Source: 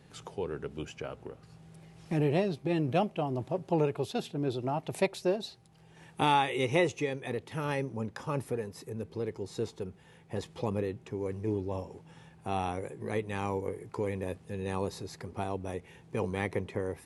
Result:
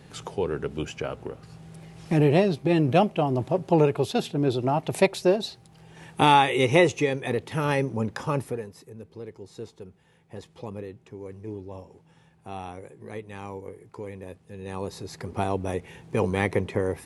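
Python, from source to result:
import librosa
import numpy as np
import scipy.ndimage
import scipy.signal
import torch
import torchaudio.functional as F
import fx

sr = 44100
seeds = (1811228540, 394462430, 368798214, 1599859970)

y = fx.gain(x, sr, db=fx.line((8.26, 8.0), (8.89, -4.5), (14.47, -4.5), (15.36, 8.0)))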